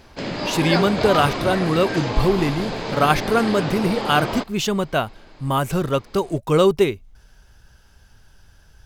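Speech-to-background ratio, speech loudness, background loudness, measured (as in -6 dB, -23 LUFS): 4.5 dB, -21.0 LUFS, -25.5 LUFS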